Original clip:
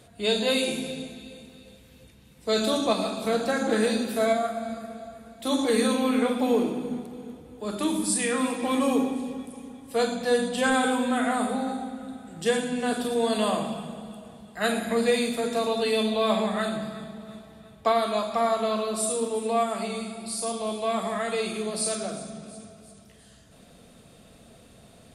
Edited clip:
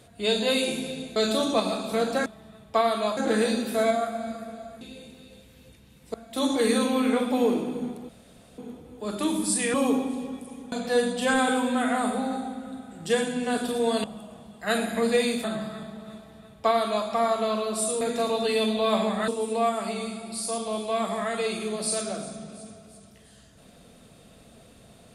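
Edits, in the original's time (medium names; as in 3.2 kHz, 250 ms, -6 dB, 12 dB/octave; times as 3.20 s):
1.16–2.49 s: move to 5.23 s
7.18 s: insert room tone 0.49 s
8.34–8.80 s: delete
9.78–10.08 s: delete
13.40–13.98 s: delete
15.38–16.65 s: move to 19.22 s
17.37–18.28 s: copy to 3.59 s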